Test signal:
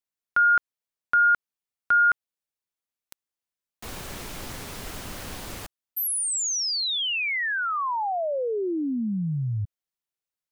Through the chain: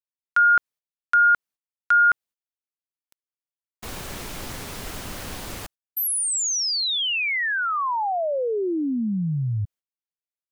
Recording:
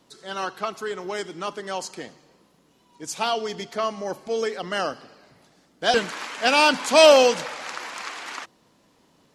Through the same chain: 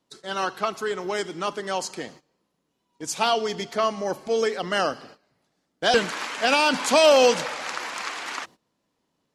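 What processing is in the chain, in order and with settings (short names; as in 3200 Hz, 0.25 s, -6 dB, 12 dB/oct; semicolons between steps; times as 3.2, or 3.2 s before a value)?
gate -48 dBFS, range -17 dB; maximiser +9 dB; gain -6.5 dB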